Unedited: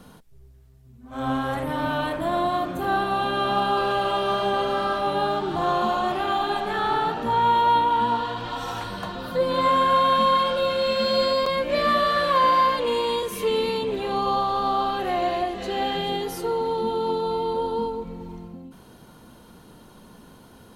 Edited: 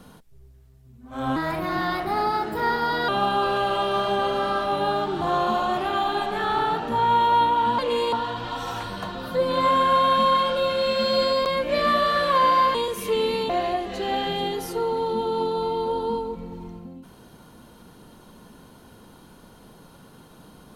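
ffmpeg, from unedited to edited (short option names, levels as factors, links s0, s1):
-filter_complex "[0:a]asplit=7[s0][s1][s2][s3][s4][s5][s6];[s0]atrim=end=1.364[s7];[s1]atrim=start=1.36:end=3.43,asetpts=PTS-STARTPTS,asetrate=52920,aresample=44100,atrim=end_sample=76072,asetpts=PTS-STARTPTS[s8];[s2]atrim=start=3.426:end=8.132[s9];[s3]atrim=start=12.748:end=13.092[s10];[s4]atrim=start=8.128:end=12.752[s11];[s5]atrim=start=13.088:end=13.842[s12];[s6]atrim=start=15.178[s13];[s7][s8]acrossfade=d=0.004:c1=hsin:c2=hsin[s14];[s14][s9]acrossfade=d=0.004:c1=hsin:c2=hsin[s15];[s15][s10]acrossfade=d=0.004:c1=hsin:c2=hsin[s16];[s16][s11]acrossfade=d=0.004:c1=hsin:c2=hsin[s17];[s17][s12]acrossfade=d=0.004:c1=hsin:c2=hsin[s18];[s18][s13]acrossfade=d=0.004:c1=hsin:c2=hsin"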